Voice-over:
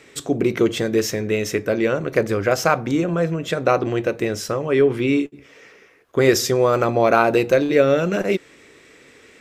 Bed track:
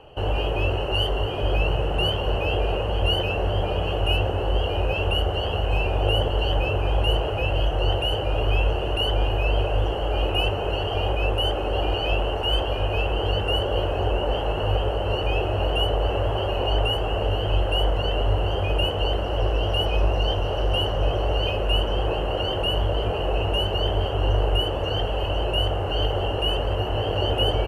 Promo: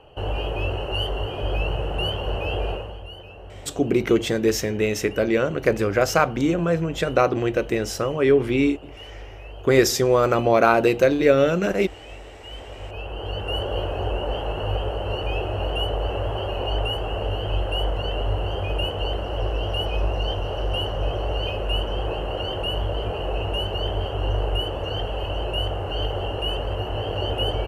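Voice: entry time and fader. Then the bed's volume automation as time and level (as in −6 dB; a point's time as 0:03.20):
3.50 s, −1.0 dB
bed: 0:02.70 −2.5 dB
0:03.07 −17.5 dB
0:12.37 −17.5 dB
0:13.62 −2.5 dB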